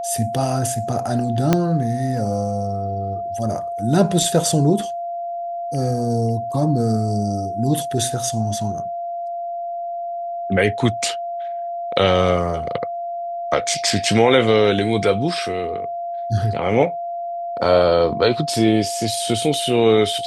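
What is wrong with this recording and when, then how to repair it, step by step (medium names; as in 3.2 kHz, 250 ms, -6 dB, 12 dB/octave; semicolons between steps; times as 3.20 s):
whine 690 Hz -24 dBFS
1.53 s: pop -2 dBFS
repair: de-click; band-stop 690 Hz, Q 30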